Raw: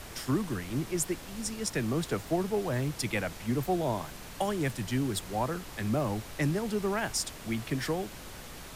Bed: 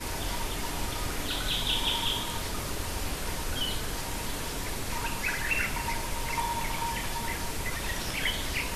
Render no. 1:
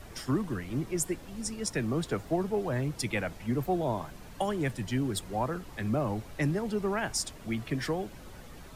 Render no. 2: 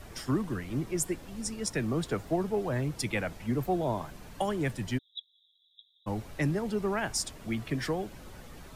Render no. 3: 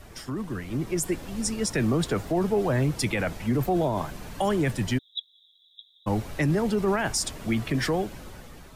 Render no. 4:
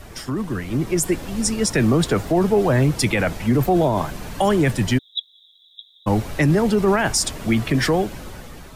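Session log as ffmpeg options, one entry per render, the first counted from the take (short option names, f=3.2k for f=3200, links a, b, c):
-af "afftdn=nr=9:nf=-45"
-filter_complex "[0:a]asplit=3[a][b][c];[a]afade=t=out:st=4.97:d=0.02[d];[b]asuperpass=centerf=3600:order=20:qfactor=5.5,afade=t=in:st=4.97:d=0.02,afade=t=out:st=6.06:d=0.02[e];[c]afade=t=in:st=6.06:d=0.02[f];[d][e][f]amix=inputs=3:normalize=0"
-af "alimiter=level_in=0.5dB:limit=-24dB:level=0:latency=1:release=16,volume=-0.5dB,dynaudnorm=f=240:g=7:m=8dB"
-af "volume=7dB"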